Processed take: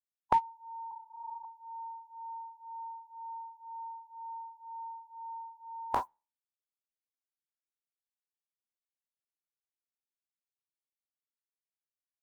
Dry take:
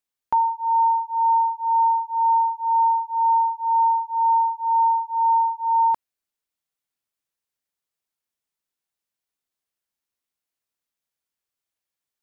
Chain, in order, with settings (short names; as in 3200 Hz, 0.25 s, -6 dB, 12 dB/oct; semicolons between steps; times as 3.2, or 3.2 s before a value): spectral trails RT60 0.36 s; spectral noise reduction 29 dB; 0.91–1.45 LPC vocoder at 8 kHz whisper; gain +4.5 dB